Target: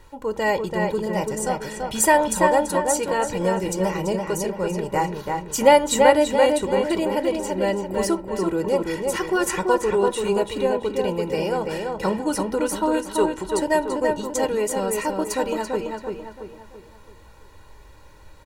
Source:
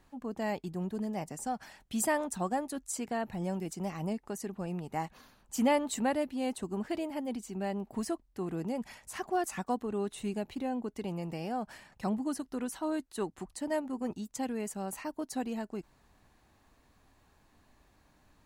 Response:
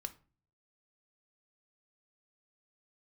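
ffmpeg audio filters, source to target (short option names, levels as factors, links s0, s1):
-filter_complex "[0:a]aecho=1:1:2.1:0.77,asplit=2[s0][s1];[s1]adelay=336,lowpass=f=3500:p=1,volume=0.668,asplit=2[s2][s3];[s3]adelay=336,lowpass=f=3500:p=1,volume=0.44,asplit=2[s4][s5];[s5]adelay=336,lowpass=f=3500:p=1,volume=0.44,asplit=2[s6][s7];[s7]adelay=336,lowpass=f=3500:p=1,volume=0.44,asplit=2[s8][s9];[s9]adelay=336,lowpass=f=3500:p=1,volume=0.44,asplit=2[s10][s11];[s11]adelay=336,lowpass=f=3500:p=1,volume=0.44[s12];[s0][s2][s4][s6][s8][s10][s12]amix=inputs=7:normalize=0,asplit=2[s13][s14];[1:a]atrim=start_sample=2205[s15];[s14][s15]afir=irnorm=-1:irlink=0,volume=2.51[s16];[s13][s16]amix=inputs=2:normalize=0,volume=1.33"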